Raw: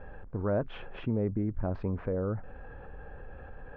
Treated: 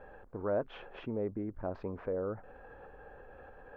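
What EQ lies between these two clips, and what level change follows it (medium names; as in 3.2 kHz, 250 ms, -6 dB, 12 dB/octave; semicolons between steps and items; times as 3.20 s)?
tone controls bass -13 dB, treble +10 dB; treble shelf 2 kHz -9 dB; 0.0 dB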